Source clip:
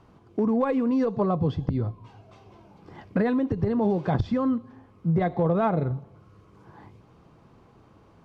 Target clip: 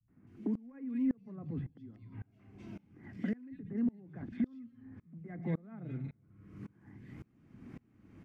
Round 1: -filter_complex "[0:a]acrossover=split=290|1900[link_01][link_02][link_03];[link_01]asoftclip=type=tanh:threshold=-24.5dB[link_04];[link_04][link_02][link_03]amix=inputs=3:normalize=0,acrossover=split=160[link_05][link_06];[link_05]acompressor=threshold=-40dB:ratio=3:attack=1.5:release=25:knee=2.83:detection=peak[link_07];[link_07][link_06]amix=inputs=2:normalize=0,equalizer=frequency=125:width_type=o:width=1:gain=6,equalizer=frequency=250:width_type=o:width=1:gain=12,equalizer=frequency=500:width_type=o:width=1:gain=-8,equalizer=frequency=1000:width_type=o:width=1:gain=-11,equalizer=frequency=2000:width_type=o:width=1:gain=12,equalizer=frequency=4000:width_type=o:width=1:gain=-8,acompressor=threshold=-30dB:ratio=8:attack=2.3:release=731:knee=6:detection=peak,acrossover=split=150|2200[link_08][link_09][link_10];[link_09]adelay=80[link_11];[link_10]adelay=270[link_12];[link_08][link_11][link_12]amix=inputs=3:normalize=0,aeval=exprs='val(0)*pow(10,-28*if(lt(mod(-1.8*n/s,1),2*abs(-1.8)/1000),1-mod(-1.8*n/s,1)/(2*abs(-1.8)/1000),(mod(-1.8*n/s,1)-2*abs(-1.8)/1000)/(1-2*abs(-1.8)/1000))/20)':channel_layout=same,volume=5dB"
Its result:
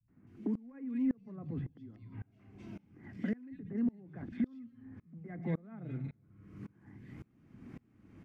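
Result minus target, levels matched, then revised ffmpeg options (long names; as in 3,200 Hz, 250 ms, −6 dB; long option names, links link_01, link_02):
soft clipping: distortion +10 dB
-filter_complex "[0:a]acrossover=split=290|1900[link_01][link_02][link_03];[link_01]asoftclip=type=tanh:threshold=-17dB[link_04];[link_04][link_02][link_03]amix=inputs=3:normalize=0,acrossover=split=160[link_05][link_06];[link_05]acompressor=threshold=-40dB:ratio=3:attack=1.5:release=25:knee=2.83:detection=peak[link_07];[link_07][link_06]amix=inputs=2:normalize=0,equalizer=frequency=125:width_type=o:width=1:gain=6,equalizer=frequency=250:width_type=o:width=1:gain=12,equalizer=frequency=500:width_type=o:width=1:gain=-8,equalizer=frequency=1000:width_type=o:width=1:gain=-11,equalizer=frequency=2000:width_type=o:width=1:gain=12,equalizer=frequency=4000:width_type=o:width=1:gain=-8,acompressor=threshold=-30dB:ratio=8:attack=2.3:release=731:knee=6:detection=peak,acrossover=split=150|2200[link_08][link_09][link_10];[link_09]adelay=80[link_11];[link_10]adelay=270[link_12];[link_08][link_11][link_12]amix=inputs=3:normalize=0,aeval=exprs='val(0)*pow(10,-28*if(lt(mod(-1.8*n/s,1),2*abs(-1.8)/1000),1-mod(-1.8*n/s,1)/(2*abs(-1.8)/1000),(mod(-1.8*n/s,1)-2*abs(-1.8)/1000)/(1-2*abs(-1.8)/1000))/20)':channel_layout=same,volume=5dB"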